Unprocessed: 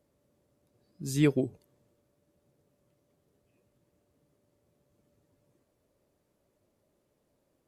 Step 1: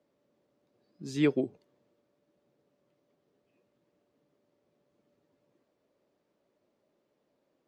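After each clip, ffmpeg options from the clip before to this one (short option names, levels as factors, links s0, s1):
-filter_complex "[0:a]acrossover=split=170 5800:gain=0.141 1 0.0708[s0][s1][s2];[s0][s1][s2]amix=inputs=3:normalize=0"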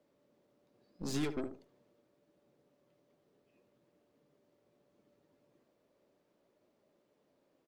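-filter_complex "[0:a]acrossover=split=4200[s0][s1];[s0]acompressor=threshold=0.02:ratio=16[s2];[s2][s1]amix=inputs=2:normalize=0,aeval=exprs='0.0422*(cos(1*acos(clip(val(0)/0.0422,-1,1)))-cos(1*PI/2))+0.00531*(cos(8*acos(clip(val(0)/0.0422,-1,1)))-cos(8*PI/2))':c=same,asplit=2[s3][s4];[s4]adelay=75,lowpass=f=1300:p=1,volume=0.335,asplit=2[s5][s6];[s6]adelay=75,lowpass=f=1300:p=1,volume=0.24,asplit=2[s7][s8];[s8]adelay=75,lowpass=f=1300:p=1,volume=0.24[s9];[s3][s5][s7][s9]amix=inputs=4:normalize=0,volume=1.12"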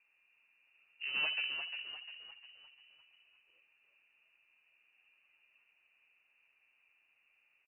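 -filter_complex "[0:a]equalizer=f=97:w=0.98:g=-11,asplit=7[s0][s1][s2][s3][s4][s5][s6];[s1]adelay=351,afreqshift=-68,volume=0.447[s7];[s2]adelay=702,afreqshift=-136,volume=0.209[s8];[s3]adelay=1053,afreqshift=-204,volume=0.0989[s9];[s4]adelay=1404,afreqshift=-272,volume=0.0462[s10];[s5]adelay=1755,afreqshift=-340,volume=0.0219[s11];[s6]adelay=2106,afreqshift=-408,volume=0.0102[s12];[s0][s7][s8][s9][s10][s11][s12]amix=inputs=7:normalize=0,lowpass=f=2600:t=q:w=0.5098,lowpass=f=2600:t=q:w=0.6013,lowpass=f=2600:t=q:w=0.9,lowpass=f=2600:t=q:w=2.563,afreqshift=-3000,volume=1.19"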